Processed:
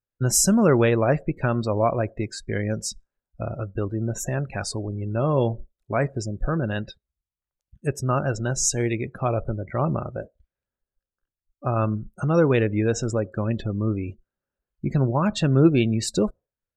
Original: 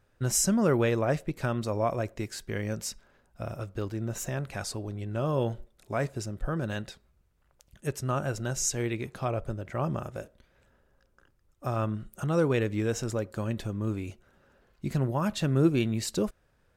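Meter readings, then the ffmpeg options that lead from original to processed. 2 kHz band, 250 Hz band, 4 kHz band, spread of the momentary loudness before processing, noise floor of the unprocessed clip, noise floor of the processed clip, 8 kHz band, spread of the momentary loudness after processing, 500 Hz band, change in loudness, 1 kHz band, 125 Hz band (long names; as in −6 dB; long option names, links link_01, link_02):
+5.5 dB, +6.5 dB, +5.0 dB, 13 LU, −68 dBFS, below −85 dBFS, +6.0 dB, 13 LU, +6.5 dB, +6.5 dB, +6.5 dB, +6.5 dB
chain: -af "afftdn=noise_reduction=33:noise_floor=-42,volume=6.5dB"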